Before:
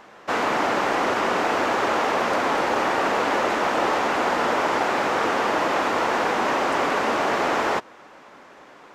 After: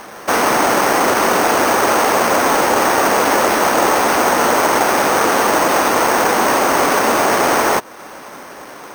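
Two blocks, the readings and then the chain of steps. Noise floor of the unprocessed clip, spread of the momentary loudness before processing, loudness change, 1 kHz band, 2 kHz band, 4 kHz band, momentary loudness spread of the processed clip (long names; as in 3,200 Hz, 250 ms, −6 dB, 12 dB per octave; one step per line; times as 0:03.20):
−47 dBFS, 0 LU, +8.5 dB, +8.0 dB, +7.5 dB, +8.5 dB, 0 LU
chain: in parallel at +0.5 dB: downward compressor, threshold −35 dBFS, peak gain reduction 16 dB
on the sum: bad sample-rate conversion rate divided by 6×, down none, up hold
level +6.5 dB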